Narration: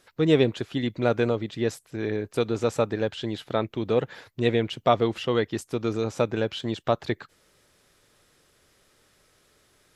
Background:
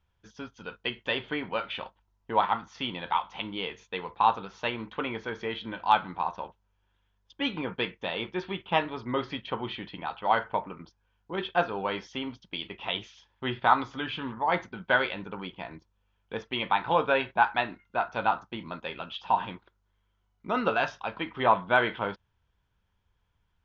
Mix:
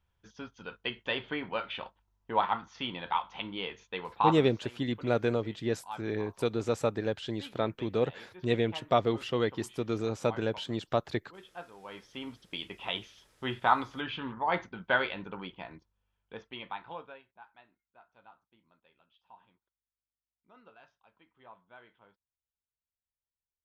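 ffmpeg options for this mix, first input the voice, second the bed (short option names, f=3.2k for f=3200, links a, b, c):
-filter_complex "[0:a]adelay=4050,volume=-5dB[a];[1:a]volume=13dB,afade=t=out:st=4.39:d=0.24:silence=0.158489,afade=t=in:st=11.81:d=0.69:silence=0.158489,afade=t=out:st=15.28:d=1.94:silence=0.0398107[b];[a][b]amix=inputs=2:normalize=0"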